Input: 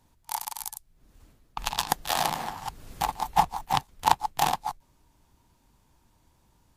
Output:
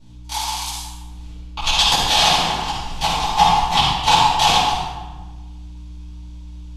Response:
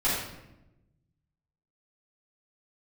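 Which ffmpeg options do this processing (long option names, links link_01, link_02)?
-filter_complex "[0:a]lowpass=3300,acrossover=split=230|520|1900[link_01][link_02][link_03][link_04];[link_04]aexciter=amount=5.6:drive=6.7:freq=2400[link_05];[link_01][link_02][link_03][link_05]amix=inputs=4:normalize=0,acrusher=bits=8:mode=log:mix=0:aa=0.000001,aeval=exprs='val(0)+0.00355*(sin(2*PI*60*n/s)+sin(2*PI*2*60*n/s)/2+sin(2*PI*3*60*n/s)/3+sin(2*PI*4*60*n/s)/4+sin(2*PI*5*60*n/s)/5)':channel_layout=same[link_06];[1:a]atrim=start_sample=2205,asetrate=28665,aresample=44100[link_07];[link_06][link_07]afir=irnorm=-1:irlink=0,volume=-6dB"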